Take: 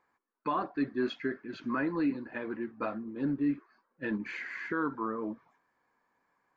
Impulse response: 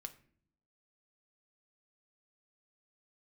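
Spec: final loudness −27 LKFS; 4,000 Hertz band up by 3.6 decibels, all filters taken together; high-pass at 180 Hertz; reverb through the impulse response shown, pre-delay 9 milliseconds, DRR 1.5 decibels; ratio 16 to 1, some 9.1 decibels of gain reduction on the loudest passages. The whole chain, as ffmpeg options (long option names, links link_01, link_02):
-filter_complex "[0:a]highpass=180,equalizer=frequency=4000:width_type=o:gain=4.5,acompressor=threshold=-35dB:ratio=16,asplit=2[link_01][link_02];[1:a]atrim=start_sample=2205,adelay=9[link_03];[link_02][link_03]afir=irnorm=-1:irlink=0,volume=3dB[link_04];[link_01][link_04]amix=inputs=2:normalize=0,volume=11.5dB"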